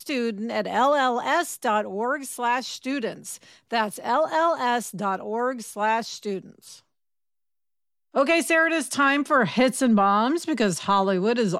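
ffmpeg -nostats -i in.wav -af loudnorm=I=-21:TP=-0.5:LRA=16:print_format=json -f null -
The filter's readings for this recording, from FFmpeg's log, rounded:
"input_i" : "-22.9",
"input_tp" : "-9.7",
"input_lra" : "4.8",
"input_thresh" : "-33.1",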